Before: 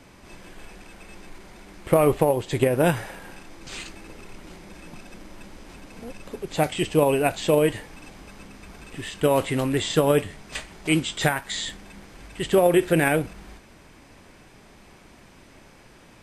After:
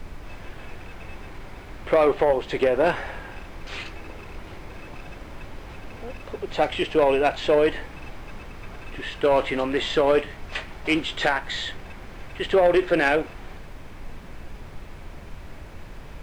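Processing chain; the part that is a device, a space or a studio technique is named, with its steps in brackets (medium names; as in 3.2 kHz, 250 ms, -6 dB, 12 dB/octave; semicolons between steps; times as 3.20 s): aircraft cabin announcement (band-pass 380–3200 Hz; saturation -15.5 dBFS, distortion -15 dB; brown noise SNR 11 dB); trim +4.5 dB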